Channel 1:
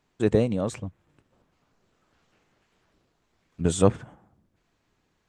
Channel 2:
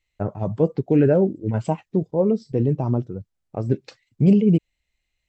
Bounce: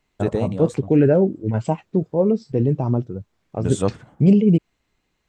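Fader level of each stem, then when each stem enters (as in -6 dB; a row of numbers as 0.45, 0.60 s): -2.0, +1.5 dB; 0.00, 0.00 s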